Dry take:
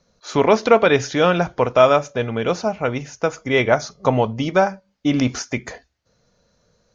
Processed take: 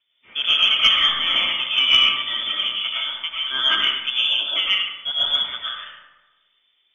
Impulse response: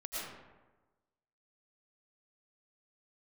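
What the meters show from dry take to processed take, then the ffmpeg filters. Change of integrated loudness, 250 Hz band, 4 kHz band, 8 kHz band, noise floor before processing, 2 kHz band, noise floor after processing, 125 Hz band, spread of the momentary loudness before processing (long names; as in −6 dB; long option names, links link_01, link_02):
+1.0 dB, −24.5 dB, +17.5 dB, can't be measured, −66 dBFS, +1.5 dB, −67 dBFS, below −25 dB, 10 LU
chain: -filter_complex "[0:a]lowpass=frequency=3100:width_type=q:width=0.5098,lowpass=frequency=3100:width_type=q:width=0.6013,lowpass=frequency=3100:width_type=q:width=0.9,lowpass=frequency=3100:width_type=q:width=2.563,afreqshift=-3600[link_01];[1:a]atrim=start_sample=2205[link_02];[link_01][link_02]afir=irnorm=-1:irlink=0,aeval=exprs='1.12*(cos(1*acos(clip(val(0)/1.12,-1,1)))-cos(1*PI/2))+0.141*(cos(2*acos(clip(val(0)/1.12,-1,1)))-cos(2*PI/2))+0.0282*(cos(4*acos(clip(val(0)/1.12,-1,1)))-cos(4*PI/2))':channel_layout=same,volume=-3dB"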